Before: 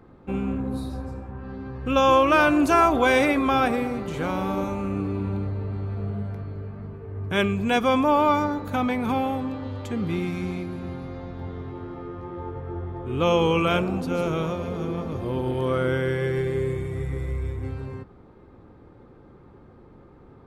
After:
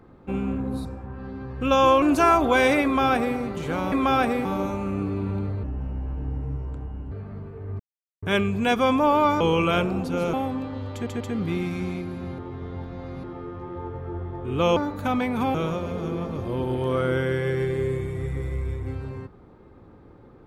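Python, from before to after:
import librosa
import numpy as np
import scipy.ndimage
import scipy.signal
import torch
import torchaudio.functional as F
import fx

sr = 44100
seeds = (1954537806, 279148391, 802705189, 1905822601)

y = fx.edit(x, sr, fx.cut(start_s=0.85, length_s=0.25),
    fx.cut(start_s=2.27, length_s=0.26),
    fx.duplicate(start_s=3.35, length_s=0.53, to_s=4.43),
    fx.speed_span(start_s=5.61, length_s=0.98, speed=0.66),
    fx.insert_silence(at_s=7.27, length_s=0.43),
    fx.swap(start_s=8.45, length_s=0.78, other_s=13.38, other_length_s=0.93),
    fx.stutter(start_s=9.82, slice_s=0.14, count=3),
    fx.reverse_span(start_s=11.0, length_s=0.85), tone=tone)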